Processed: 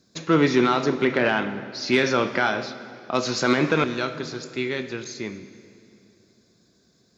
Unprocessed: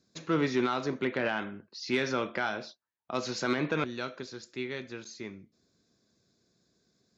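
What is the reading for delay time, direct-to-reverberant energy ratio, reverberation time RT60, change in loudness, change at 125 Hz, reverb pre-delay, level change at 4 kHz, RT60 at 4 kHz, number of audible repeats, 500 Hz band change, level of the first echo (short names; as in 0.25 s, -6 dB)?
none, 11.5 dB, 2.6 s, +9.0 dB, +9.0 dB, 17 ms, +9.5 dB, 2.3 s, none, +9.5 dB, none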